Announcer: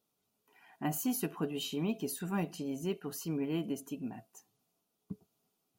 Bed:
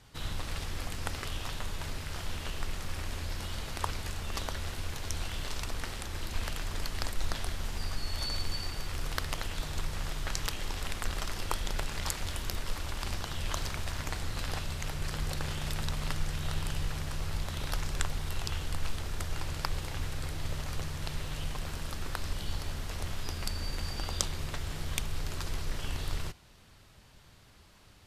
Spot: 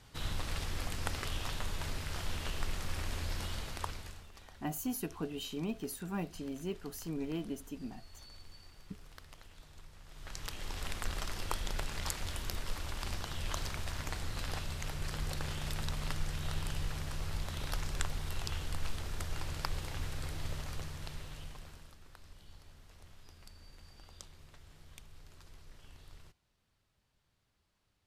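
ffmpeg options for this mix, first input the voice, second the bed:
-filter_complex "[0:a]adelay=3800,volume=0.668[s0];[1:a]volume=5.96,afade=t=out:st=3.42:d=0.89:silence=0.112202,afade=t=in:st=10.07:d=0.79:silence=0.149624,afade=t=out:st=20.42:d=1.55:silence=0.141254[s1];[s0][s1]amix=inputs=2:normalize=0"

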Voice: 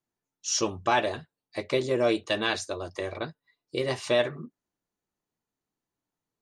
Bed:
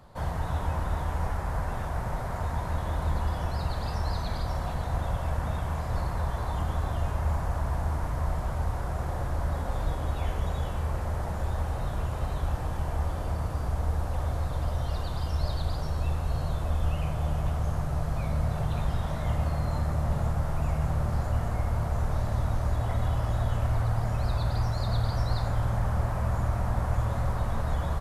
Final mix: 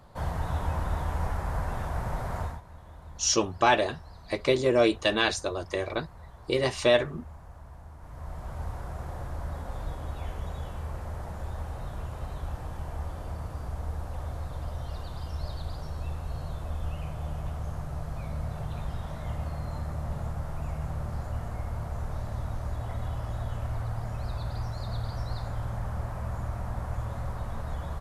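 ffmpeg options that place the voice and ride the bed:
-filter_complex "[0:a]adelay=2750,volume=1.33[s0];[1:a]volume=3.76,afade=t=out:st=2.4:d=0.21:silence=0.133352,afade=t=in:st=7.98:d=0.65:silence=0.251189[s1];[s0][s1]amix=inputs=2:normalize=0"

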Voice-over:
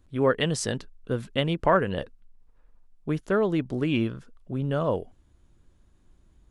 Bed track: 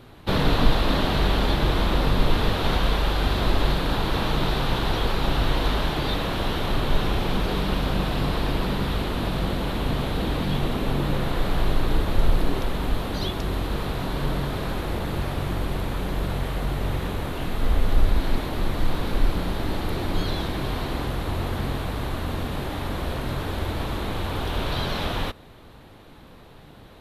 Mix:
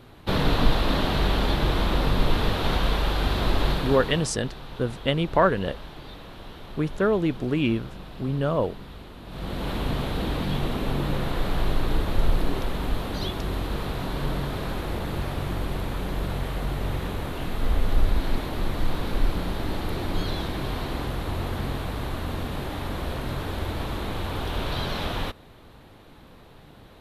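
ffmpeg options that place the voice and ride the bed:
-filter_complex "[0:a]adelay=3700,volume=1.19[s0];[1:a]volume=4.47,afade=t=out:st=3.71:d=0.62:silence=0.177828,afade=t=in:st=9.26:d=0.45:silence=0.188365[s1];[s0][s1]amix=inputs=2:normalize=0"

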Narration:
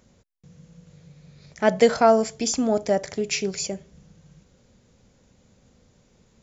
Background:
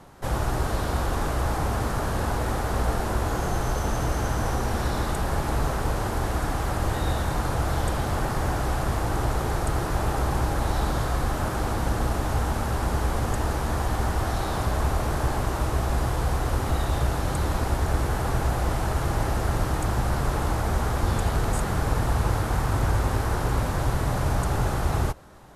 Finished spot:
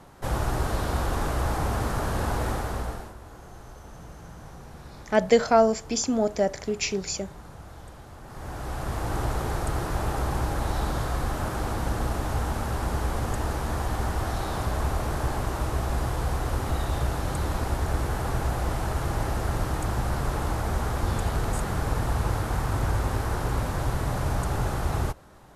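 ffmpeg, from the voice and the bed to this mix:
-filter_complex "[0:a]adelay=3500,volume=0.794[s0];[1:a]volume=5.96,afade=t=out:st=2.46:d=0.68:silence=0.125893,afade=t=in:st=8.24:d=0.92:silence=0.149624[s1];[s0][s1]amix=inputs=2:normalize=0"

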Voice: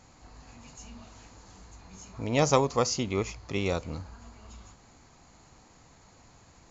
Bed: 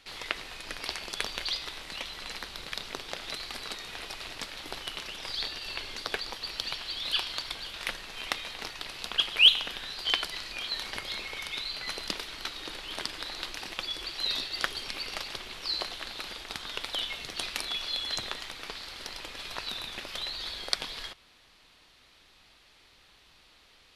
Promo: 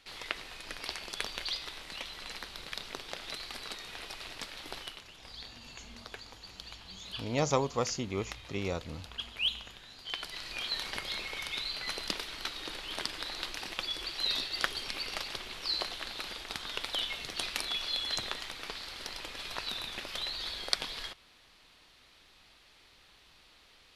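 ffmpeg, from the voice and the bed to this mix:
-filter_complex "[0:a]adelay=5000,volume=0.531[s0];[1:a]volume=2.66,afade=t=out:st=4.81:d=0.21:silence=0.334965,afade=t=in:st=10.08:d=0.5:silence=0.251189[s1];[s0][s1]amix=inputs=2:normalize=0"

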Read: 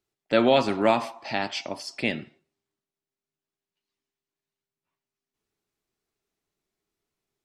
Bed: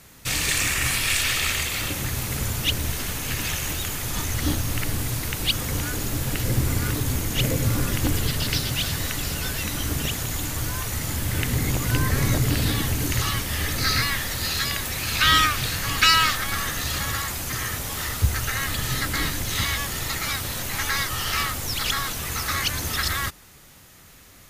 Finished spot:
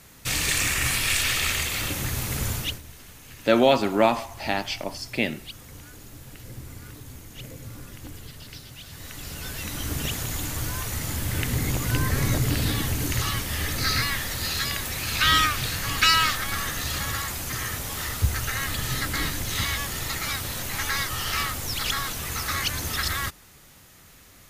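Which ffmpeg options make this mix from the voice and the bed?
-filter_complex "[0:a]adelay=3150,volume=1.19[s0];[1:a]volume=5.31,afade=t=out:st=2.53:d=0.28:silence=0.149624,afade=t=in:st=8.86:d=1.26:silence=0.16788[s1];[s0][s1]amix=inputs=2:normalize=0"

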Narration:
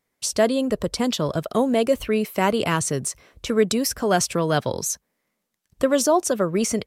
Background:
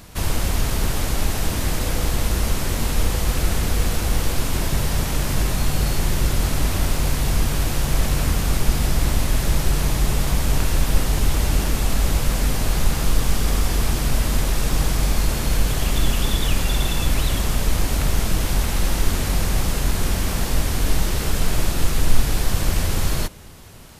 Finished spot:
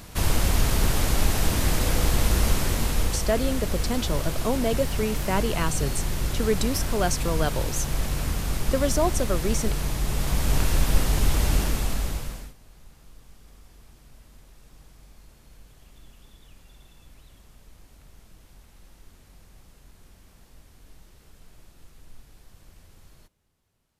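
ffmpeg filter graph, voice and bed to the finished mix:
-filter_complex "[0:a]adelay=2900,volume=0.531[s0];[1:a]volume=1.58,afade=t=out:st=2.5:d=0.8:silence=0.473151,afade=t=in:st=10.04:d=0.54:silence=0.595662,afade=t=out:st=11.54:d=1:silence=0.0354813[s1];[s0][s1]amix=inputs=2:normalize=0"

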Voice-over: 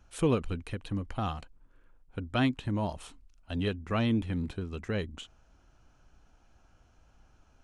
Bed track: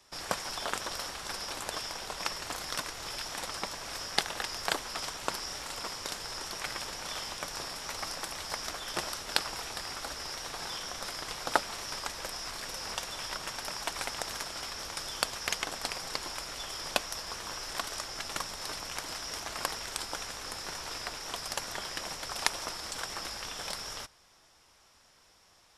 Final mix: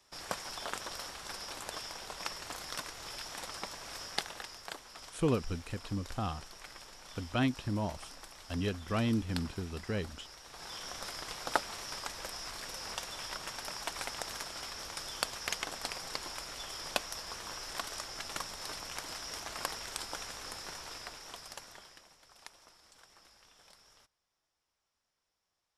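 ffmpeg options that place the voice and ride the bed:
-filter_complex "[0:a]adelay=5000,volume=0.708[s0];[1:a]volume=1.68,afade=t=out:st=4.05:d=0.6:silence=0.398107,afade=t=in:st=10.46:d=0.44:silence=0.334965,afade=t=out:st=20.44:d=1.64:silence=0.112202[s1];[s0][s1]amix=inputs=2:normalize=0"

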